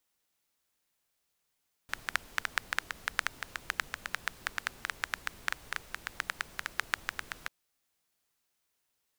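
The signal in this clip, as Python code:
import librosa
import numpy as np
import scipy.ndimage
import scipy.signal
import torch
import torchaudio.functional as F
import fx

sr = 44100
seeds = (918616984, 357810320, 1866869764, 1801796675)

y = fx.rain(sr, seeds[0], length_s=5.59, drops_per_s=8.0, hz=1600.0, bed_db=-14)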